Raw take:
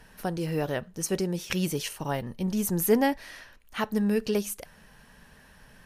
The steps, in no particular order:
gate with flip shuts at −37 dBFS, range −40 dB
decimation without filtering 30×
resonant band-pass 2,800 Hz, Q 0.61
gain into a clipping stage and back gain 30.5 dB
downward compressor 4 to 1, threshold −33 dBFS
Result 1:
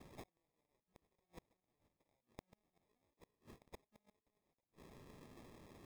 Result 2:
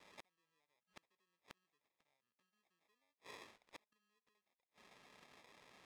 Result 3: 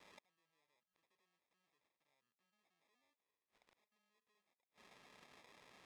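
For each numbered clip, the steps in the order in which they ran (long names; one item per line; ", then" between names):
gain into a clipping stage and back, then downward compressor, then resonant band-pass, then gate with flip, then decimation without filtering
downward compressor, then decimation without filtering, then resonant band-pass, then gain into a clipping stage and back, then gate with flip
gain into a clipping stage and back, then downward compressor, then gate with flip, then decimation without filtering, then resonant band-pass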